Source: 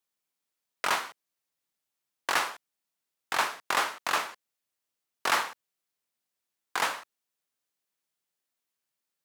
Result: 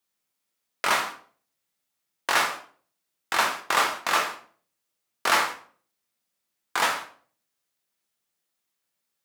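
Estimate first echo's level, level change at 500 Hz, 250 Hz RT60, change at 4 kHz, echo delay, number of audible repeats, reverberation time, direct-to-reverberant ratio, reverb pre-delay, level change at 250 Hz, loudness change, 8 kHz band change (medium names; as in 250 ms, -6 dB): no echo, +5.0 dB, 0.55 s, +5.0 dB, no echo, no echo, 0.45 s, 2.5 dB, 6 ms, +5.5 dB, +4.5 dB, +5.0 dB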